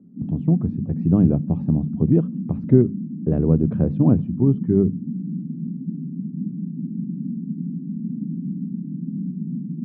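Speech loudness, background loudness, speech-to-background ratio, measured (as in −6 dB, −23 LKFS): −20.5 LKFS, −29.0 LKFS, 8.5 dB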